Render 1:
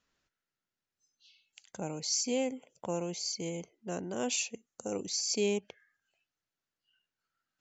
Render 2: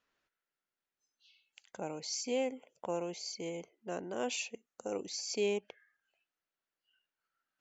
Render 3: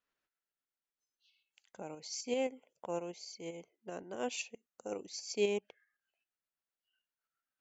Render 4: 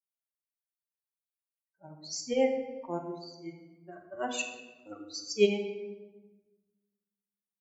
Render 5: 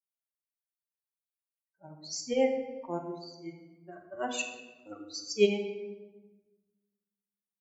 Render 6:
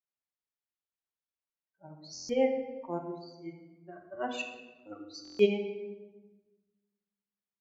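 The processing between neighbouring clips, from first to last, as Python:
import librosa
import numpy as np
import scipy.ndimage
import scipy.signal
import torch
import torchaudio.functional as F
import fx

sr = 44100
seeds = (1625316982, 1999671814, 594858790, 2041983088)

y1 = fx.bass_treble(x, sr, bass_db=-10, treble_db=-9)
y2 = fx.tremolo_shape(y1, sr, shape='saw_up', hz=7.7, depth_pct=40)
y2 = fx.upward_expand(y2, sr, threshold_db=-46.0, expansion=1.5)
y2 = y2 * 10.0 ** (3.0 / 20.0)
y3 = fx.bin_expand(y2, sr, power=3.0)
y3 = fx.room_shoebox(y3, sr, seeds[0], volume_m3=750.0, walls='mixed', distance_m=1.1)
y3 = fx.attack_slew(y3, sr, db_per_s=450.0)
y3 = y3 * 10.0 ** (8.5 / 20.0)
y4 = y3
y5 = fx.air_absorb(y4, sr, metres=160.0)
y5 = fx.buffer_glitch(y5, sr, at_s=(2.13, 5.23), block=1024, repeats=6)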